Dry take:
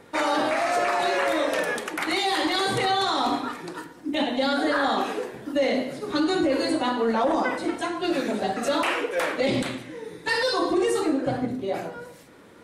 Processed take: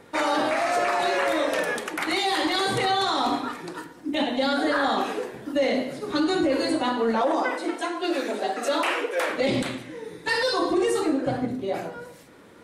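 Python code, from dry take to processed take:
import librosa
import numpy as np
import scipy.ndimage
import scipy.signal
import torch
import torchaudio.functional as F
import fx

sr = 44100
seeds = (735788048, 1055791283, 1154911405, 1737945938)

y = fx.highpass(x, sr, hz=280.0, slope=24, at=(7.21, 9.3))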